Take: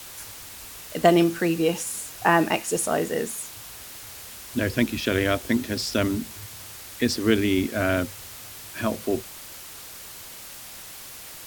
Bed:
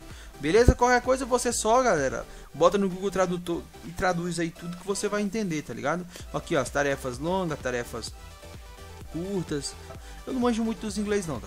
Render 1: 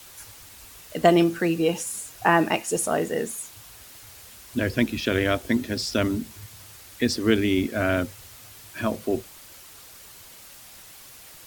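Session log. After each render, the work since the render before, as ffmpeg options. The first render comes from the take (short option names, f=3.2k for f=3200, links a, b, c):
-af "afftdn=nr=6:nf=-41"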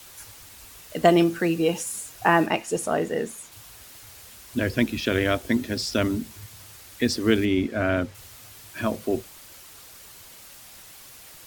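-filter_complex "[0:a]asettb=1/sr,asplit=3[a][b][c];[a]atrim=end=2.464[d];[b]atrim=start=2.46:end=3.52,asetpts=PTS-STARTPTS,afade=t=in:d=0.004:c=qsin,afade=t=out:st=1.056:d=0.004:c=qsin,highshelf=f=6.6k:g=-9[e];[c]atrim=start=3.516[f];[d][e]acrossfade=d=0.004:c1=hsin:c2=qsin[g];[g][f]acrossfade=d=0.004:c1=qsin:c2=hsin,asettb=1/sr,asplit=3[h][i][j];[h]atrim=end=7.454[k];[i]atrim=start=7.45:end=8.15,asetpts=PTS-STARTPTS,afade=t=in:d=0.004:c=qsin,afade=t=out:st=0.696:d=0.004:c=qsin,aemphasis=mode=reproduction:type=50kf[l];[j]atrim=start=8.146[m];[k][l]acrossfade=d=0.004:c1=hsin:c2=qsin[n];[n][m]acrossfade=d=0.004:c1=qsin:c2=hsin"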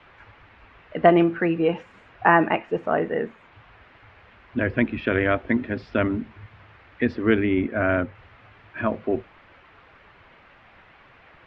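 -af "lowpass=f=2.4k:w=0.5412,lowpass=f=2.4k:w=1.3066,equalizer=f=1.4k:t=o:w=2.7:g=3.5"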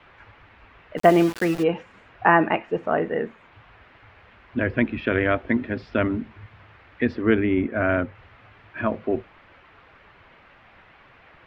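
-filter_complex "[0:a]asplit=3[a][b][c];[a]afade=t=out:st=0.97:d=0.02[d];[b]aeval=exprs='val(0)*gte(abs(val(0)),0.0376)':c=same,afade=t=in:st=0.97:d=0.02,afade=t=out:st=1.62:d=0.02[e];[c]afade=t=in:st=1.62:d=0.02[f];[d][e][f]amix=inputs=3:normalize=0,asettb=1/sr,asplit=3[g][h][i];[g]atrim=end=7.214[j];[h]atrim=start=7.21:end=7.74,asetpts=PTS-STARTPTS,afade=t=in:d=0.004:c=qsin,afade=t=out:st=0.526:d=0.004:c=qsin,aemphasis=mode=reproduction:type=50fm[k];[i]atrim=start=7.736[l];[j][k]acrossfade=d=0.004:c1=hsin:c2=qsin[m];[m][l]acrossfade=d=0.004:c1=qsin:c2=hsin"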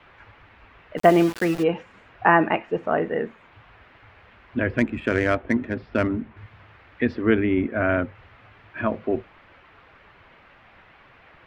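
-filter_complex "[0:a]asettb=1/sr,asplit=3[a][b][c];[a]atrim=end=4.784[d];[b]atrim=start=4.78:end=6.37,asetpts=PTS-STARTPTS,afade=t=in:d=0.004:c=qsin,afade=t=out:st=1.586:d=0.004:c=qsin,adynamicsmooth=sensitivity=2:basefreq=3k[e];[c]atrim=start=6.366[f];[d][e]acrossfade=d=0.004:c1=hsin:c2=qsin[g];[g][f]acrossfade=d=0.004:c1=qsin:c2=hsin"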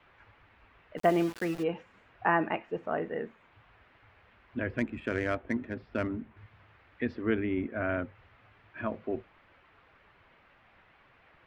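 -af "volume=-9.5dB"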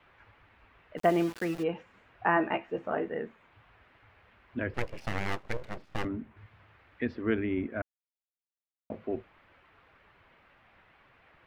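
-filter_complex "[0:a]asettb=1/sr,asplit=3[a][b][c];[a]atrim=end=2.354[d];[b]atrim=start=2.35:end=3.06,asetpts=PTS-STARTPTS,afade=t=in:d=0.004:c=qsin,afade=t=out:st=0.706:d=0.004:c=qsin,asplit=2[e][f];[f]adelay=15,volume=-5dB[g];[e][g]amix=inputs=2:normalize=0,atrim=end_sample=31311[h];[c]atrim=start=3.056[i];[d][h]acrossfade=d=0.004:c1=hsin:c2=qsin[j];[j][i]acrossfade=d=0.004:c1=qsin:c2=hsin,asettb=1/sr,asplit=3[k][l][m];[k]atrim=end=4.744[n];[l]atrim=start=4.74:end=6.05,asetpts=PTS-STARTPTS,afade=t=in:d=0.004:c=qsin,afade=t=out:st=1.306:d=0.004:c=qsin,aeval=exprs='abs(val(0))':c=same[o];[m]atrim=start=6.046[p];[n][o]acrossfade=d=0.004:c1=hsin:c2=qsin[q];[q][p]acrossfade=d=0.004:c1=qsin:c2=hsin,asplit=3[r][s][t];[r]atrim=end=7.82,asetpts=PTS-STARTPTS,afade=t=out:st=7.816:d=0.004:c=hsin[u];[s]atrim=start=7.82:end=8.9,asetpts=PTS-STARTPTS,volume=0[v];[t]atrim=start=8.9,asetpts=PTS-STARTPTS,afade=t=in:d=0.004:c=hsin[w];[u][v][w]concat=n=3:v=0:a=1"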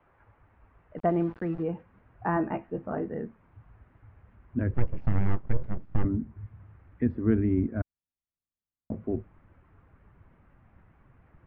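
-af "lowpass=1.2k,asubboost=boost=4.5:cutoff=250"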